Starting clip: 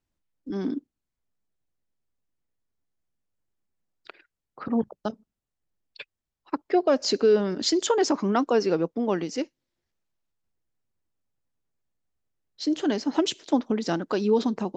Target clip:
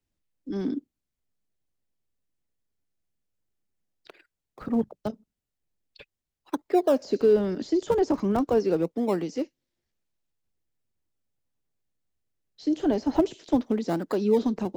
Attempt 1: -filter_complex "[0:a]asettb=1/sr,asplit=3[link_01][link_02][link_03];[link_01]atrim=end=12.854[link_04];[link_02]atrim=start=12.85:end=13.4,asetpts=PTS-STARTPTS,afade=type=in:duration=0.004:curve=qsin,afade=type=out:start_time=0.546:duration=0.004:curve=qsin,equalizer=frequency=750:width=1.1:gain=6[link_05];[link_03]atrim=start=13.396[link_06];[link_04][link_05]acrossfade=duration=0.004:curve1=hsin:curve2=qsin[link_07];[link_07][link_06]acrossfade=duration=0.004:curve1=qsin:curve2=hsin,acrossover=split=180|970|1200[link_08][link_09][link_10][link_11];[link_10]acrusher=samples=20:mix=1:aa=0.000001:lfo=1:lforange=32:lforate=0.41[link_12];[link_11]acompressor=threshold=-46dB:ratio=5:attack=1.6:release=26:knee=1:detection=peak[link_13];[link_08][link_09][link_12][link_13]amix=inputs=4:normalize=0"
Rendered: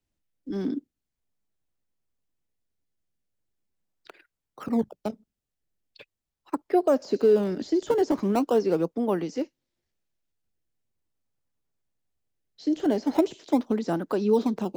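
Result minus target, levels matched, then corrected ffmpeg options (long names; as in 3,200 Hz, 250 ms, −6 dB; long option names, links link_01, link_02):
sample-and-hold swept by an LFO: distortion −9 dB
-filter_complex "[0:a]asettb=1/sr,asplit=3[link_01][link_02][link_03];[link_01]atrim=end=12.854[link_04];[link_02]atrim=start=12.85:end=13.4,asetpts=PTS-STARTPTS,afade=type=in:duration=0.004:curve=qsin,afade=type=out:start_time=0.546:duration=0.004:curve=qsin,equalizer=frequency=750:width=1.1:gain=6[link_05];[link_03]atrim=start=13.396[link_06];[link_04][link_05]acrossfade=duration=0.004:curve1=hsin:curve2=qsin[link_07];[link_07][link_06]acrossfade=duration=0.004:curve1=qsin:curve2=hsin,acrossover=split=180|970|1200[link_08][link_09][link_10][link_11];[link_10]acrusher=samples=67:mix=1:aa=0.000001:lfo=1:lforange=107:lforate=0.41[link_12];[link_11]acompressor=threshold=-46dB:ratio=5:attack=1.6:release=26:knee=1:detection=peak[link_13];[link_08][link_09][link_12][link_13]amix=inputs=4:normalize=0"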